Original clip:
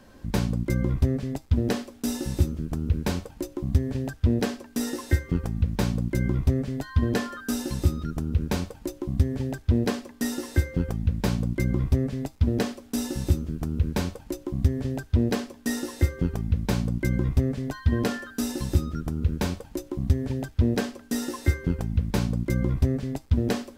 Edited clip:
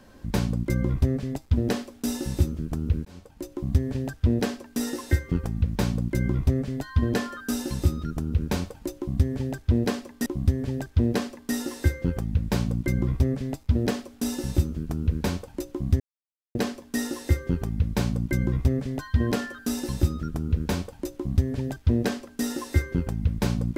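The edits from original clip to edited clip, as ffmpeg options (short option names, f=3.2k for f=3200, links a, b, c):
-filter_complex "[0:a]asplit=5[a][b][c][d][e];[a]atrim=end=3.05,asetpts=PTS-STARTPTS,afade=t=out:st=3.046:d=0.004:c=hsin[f];[b]atrim=start=3.05:end=10.262,asetpts=PTS-STARTPTS,afade=t=in:d=0.59[g];[c]atrim=start=8.978:end=14.72,asetpts=PTS-STARTPTS,afade=t=out:st=5.738:d=0.004:c=hsin[h];[d]atrim=start=14.72:end=15.27,asetpts=PTS-STARTPTS,volume=0[i];[e]atrim=start=15.27,asetpts=PTS-STARTPTS,afade=t=in:d=0.004:c=hsin[j];[f][g]concat=n=2:v=0:a=1[k];[h][i][j]concat=n=3:v=0:a=1[l];[k][l]acrossfade=d=0.004:c1=hsin:c2=hsin"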